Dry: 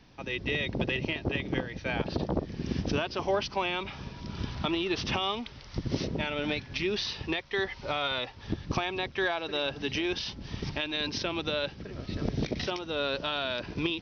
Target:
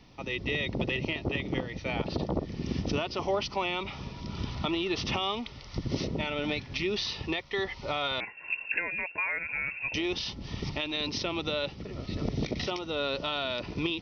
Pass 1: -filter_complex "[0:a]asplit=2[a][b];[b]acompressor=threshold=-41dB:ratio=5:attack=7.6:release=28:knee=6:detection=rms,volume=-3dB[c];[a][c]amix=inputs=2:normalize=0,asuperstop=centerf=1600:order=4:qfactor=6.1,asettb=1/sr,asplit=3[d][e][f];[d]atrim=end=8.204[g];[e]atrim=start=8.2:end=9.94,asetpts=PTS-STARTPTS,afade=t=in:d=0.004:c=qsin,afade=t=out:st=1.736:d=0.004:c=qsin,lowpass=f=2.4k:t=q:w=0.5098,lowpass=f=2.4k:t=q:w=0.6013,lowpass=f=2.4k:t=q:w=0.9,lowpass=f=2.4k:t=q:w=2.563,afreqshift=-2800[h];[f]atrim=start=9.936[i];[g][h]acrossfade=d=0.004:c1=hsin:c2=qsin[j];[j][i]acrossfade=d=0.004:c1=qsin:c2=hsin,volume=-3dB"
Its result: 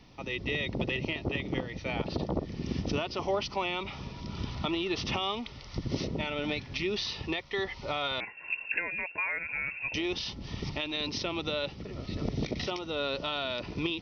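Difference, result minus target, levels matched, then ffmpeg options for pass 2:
compressor: peak gain reduction +5.5 dB
-filter_complex "[0:a]asplit=2[a][b];[b]acompressor=threshold=-34dB:ratio=5:attack=7.6:release=28:knee=6:detection=rms,volume=-3dB[c];[a][c]amix=inputs=2:normalize=0,asuperstop=centerf=1600:order=4:qfactor=6.1,asettb=1/sr,asplit=3[d][e][f];[d]atrim=end=8.204[g];[e]atrim=start=8.2:end=9.94,asetpts=PTS-STARTPTS,afade=t=in:d=0.004:c=qsin,afade=t=out:st=1.736:d=0.004:c=qsin,lowpass=f=2.4k:t=q:w=0.5098,lowpass=f=2.4k:t=q:w=0.6013,lowpass=f=2.4k:t=q:w=0.9,lowpass=f=2.4k:t=q:w=2.563,afreqshift=-2800[h];[f]atrim=start=9.936[i];[g][h]acrossfade=d=0.004:c1=hsin:c2=qsin[j];[j][i]acrossfade=d=0.004:c1=qsin:c2=hsin,volume=-3dB"

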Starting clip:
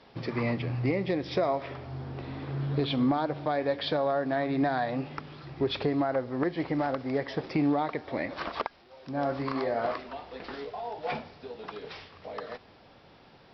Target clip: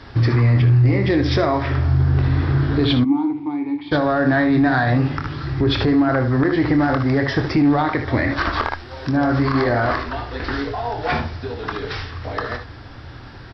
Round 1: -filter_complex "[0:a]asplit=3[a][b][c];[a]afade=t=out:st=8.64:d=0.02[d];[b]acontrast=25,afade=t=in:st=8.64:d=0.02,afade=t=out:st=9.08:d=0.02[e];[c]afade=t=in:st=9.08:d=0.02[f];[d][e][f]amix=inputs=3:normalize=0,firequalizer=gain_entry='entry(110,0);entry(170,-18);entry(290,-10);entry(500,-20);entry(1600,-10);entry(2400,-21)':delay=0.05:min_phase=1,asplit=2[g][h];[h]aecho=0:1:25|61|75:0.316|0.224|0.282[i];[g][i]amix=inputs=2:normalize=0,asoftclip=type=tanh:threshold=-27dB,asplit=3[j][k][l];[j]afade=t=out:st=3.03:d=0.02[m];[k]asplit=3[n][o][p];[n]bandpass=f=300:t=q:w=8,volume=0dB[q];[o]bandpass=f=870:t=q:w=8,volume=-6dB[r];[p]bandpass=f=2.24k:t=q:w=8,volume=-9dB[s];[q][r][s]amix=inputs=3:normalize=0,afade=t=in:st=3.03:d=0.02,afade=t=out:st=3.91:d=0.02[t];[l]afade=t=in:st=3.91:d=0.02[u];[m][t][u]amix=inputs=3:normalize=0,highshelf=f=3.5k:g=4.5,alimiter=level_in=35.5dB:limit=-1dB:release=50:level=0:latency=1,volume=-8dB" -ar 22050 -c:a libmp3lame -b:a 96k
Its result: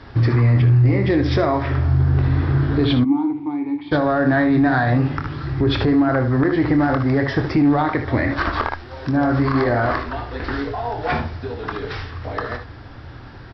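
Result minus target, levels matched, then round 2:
8000 Hz band -5.5 dB
-filter_complex "[0:a]asplit=3[a][b][c];[a]afade=t=out:st=8.64:d=0.02[d];[b]acontrast=25,afade=t=in:st=8.64:d=0.02,afade=t=out:st=9.08:d=0.02[e];[c]afade=t=in:st=9.08:d=0.02[f];[d][e][f]amix=inputs=3:normalize=0,firequalizer=gain_entry='entry(110,0);entry(170,-18);entry(290,-10);entry(500,-20);entry(1600,-10);entry(2400,-21)':delay=0.05:min_phase=1,asplit=2[g][h];[h]aecho=0:1:25|61|75:0.316|0.224|0.282[i];[g][i]amix=inputs=2:normalize=0,asoftclip=type=tanh:threshold=-27dB,asplit=3[j][k][l];[j]afade=t=out:st=3.03:d=0.02[m];[k]asplit=3[n][o][p];[n]bandpass=f=300:t=q:w=8,volume=0dB[q];[o]bandpass=f=870:t=q:w=8,volume=-6dB[r];[p]bandpass=f=2.24k:t=q:w=8,volume=-9dB[s];[q][r][s]amix=inputs=3:normalize=0,afade=t=in:st=3.03:d=0.02,afade=t=out:st=3.91:d=0.02[t];[l]afade=t=in:st=3.91:d=0.02[u];[m][t][u]amix=inputs=3:normalize=0,highshelf=f=3.5k:g=12,alimiter=level_in=35.5dB:limit=-1dB:release=50:level=0:latency=1,volume=-8dB" -ar 22050 -c:a libmp3lame -b:a 96k

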